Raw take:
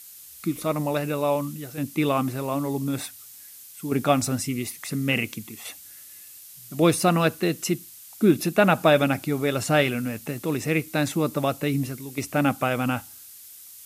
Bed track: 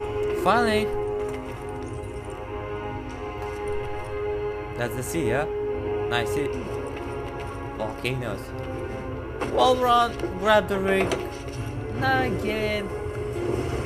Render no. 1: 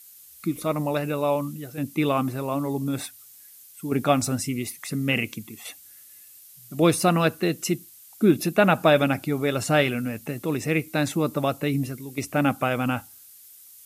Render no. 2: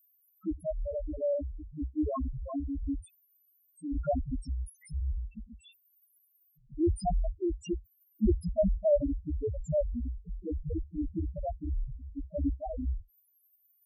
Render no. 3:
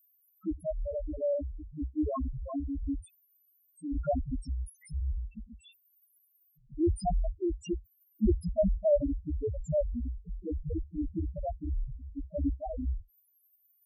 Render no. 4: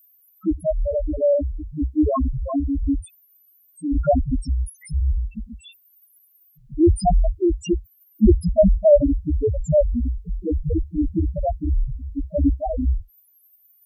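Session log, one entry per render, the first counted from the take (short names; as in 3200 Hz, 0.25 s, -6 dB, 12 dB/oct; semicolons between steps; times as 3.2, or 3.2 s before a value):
denoiser 6 dB, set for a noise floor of -46 dBFS
octaver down 2 oct, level +1 dB; loudest bins only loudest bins 1
nothing audible
gain +12 dB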